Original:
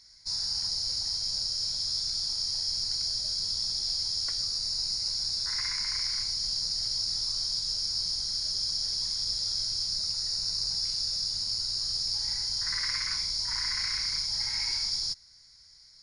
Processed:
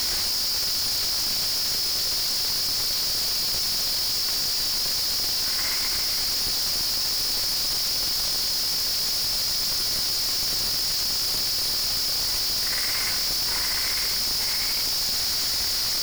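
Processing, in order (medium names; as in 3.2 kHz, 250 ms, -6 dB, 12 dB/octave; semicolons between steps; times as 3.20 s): one-bit comparator; trim +6.5 dB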